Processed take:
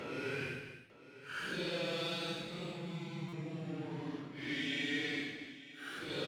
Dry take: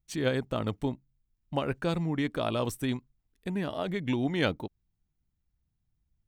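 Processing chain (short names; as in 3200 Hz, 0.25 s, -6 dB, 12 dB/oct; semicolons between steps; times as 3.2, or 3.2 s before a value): compressor 4:1, threshold -36 dBFS, peak gain reduction 12.5 dB; crossover distortion -53 dBFS; tube stage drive 34 dB, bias 0.4; Paulstretch 8.6×, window 0.05 s, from 1.66; weighting filter D; on a send: tapped delay 0.245/0.899 s -10/-16 dB; on the sum: stuck buffer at 3.28, samples 256, times 7; gain +1 dB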